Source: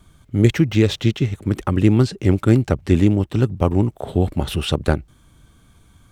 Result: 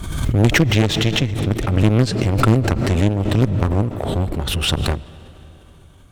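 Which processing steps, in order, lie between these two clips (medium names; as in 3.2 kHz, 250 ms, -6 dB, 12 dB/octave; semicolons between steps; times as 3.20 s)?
bass shelf 63 Hz +8.5 dB; one-sided clip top -23.5 dBFS, bottom -4 dBFS; on a send at -16 dB: reverberation RT60 3.9 s, pre-delay 75 ms; on the sum: Chebyshev shaper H 4 -12 dB, 6 -20 dB, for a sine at -4.5 dBFS; swell ahead of each attack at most 39 dB/s; trim -1 dB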